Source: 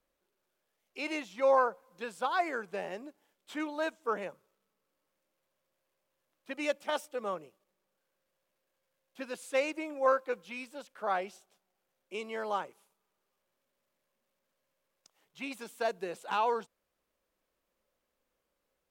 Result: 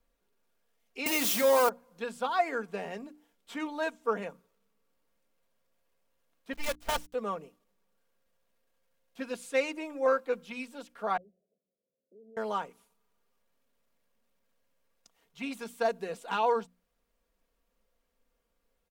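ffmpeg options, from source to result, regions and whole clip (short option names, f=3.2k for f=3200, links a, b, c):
-filter_complex "[0:a]asettb=1/sr,asplit=3[a][b][c];[a]atrim=end=1.064[d];[b]atrim=start=1.06:end=1.69,asetpts=PTS-STARTPTS,afade=t=in:d=0.004:c=qsin,afade=t=out:st=0.626:d=0.004:c=qsin,aeval=exprs='val(0)+0.5*0.0266*sgn(val(0))':c=same,highpass=f=230:w=0.5412,highpass=f=230:w=1.3066,aemphasis=mode=production:type=50kf[e];[c]atrim=start=1.686[f];[d][e]acrossfade=d=0.004:c1=hsin:c2=qsin[g];[g][f]acrossfade=d=0.004:c1=qsin:c2=hsin,asettb=1/sr,asplit=3[h][i][j];[h]atrim=end=6.534[k];[i]atrim=start=6.53:end=7.14,asetpts=PTS-STARTPTS,afade=t=in:d=0.004:c=qsin,afade=t=out:st=0.606:d=0.004:c=qsin,highpass=f=340:w=0.5412,highpass=f=340:w=1.3066,highshelf=f=9.8k:g=-8.5,acrusher=bits=6:dc=4:mix=0:aa=0.000001[l];[j]atrim=start=7.136[m];[k][l]acrossfade=d=0.004:c1=hsin:c2=qsin[n];[n][m]acrossfade=d=0.004:c1=qsin:c2=hsin,asettb=1/sr,asplit=3[o][p][q];[o]atrim=end=11.174[r];[p]atrim=start=11.17:end=12.37,asetpts=PTS-STARTPTS,afade=t=in:d=0.004:c=qsin,afade=t=out:st=1.196:d=0.004:c=qsin,equalizer=f=200:w=0.44:g=-7.5,acompressor=threshold=-58dB:ratio=2.5:attack=3.2:release=140:knee=1:detection=peak,asuperpass=centerf=270:order=20:qfactor=0.54[s];[q]atrim=start=12.366[t];[r][s]acrossfade=d=0.004:c1=hsin:c2=qsin[u];[u][t]acrossfade=d=0.004:c1=qsin:c2=hsin,lowshelf=f=140:g=11.5,bandreject=f=60:t=h:w=6,bandreject=f=120:t=h:w=6,bandreject=f=180:t=h:w=6,bandreject=f=240:t=h:w=6,bandreject=f=300:t=h:w=6,aecho=1:1:4.3:0.52"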